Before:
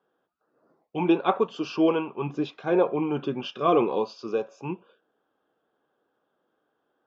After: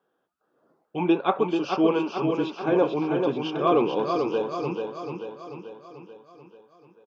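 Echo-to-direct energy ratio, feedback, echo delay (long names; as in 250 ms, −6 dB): −3.5 dB, 55%, 438 ms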